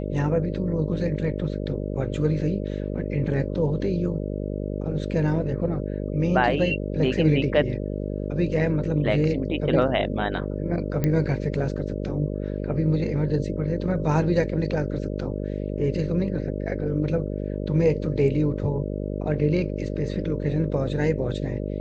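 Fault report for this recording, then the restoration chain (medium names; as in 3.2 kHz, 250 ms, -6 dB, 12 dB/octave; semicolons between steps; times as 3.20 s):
buzz 50 Hz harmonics 12 -29 dBFS
11.04 s: pop -11 dBFS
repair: de-click; de-hum 50 Hz, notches 12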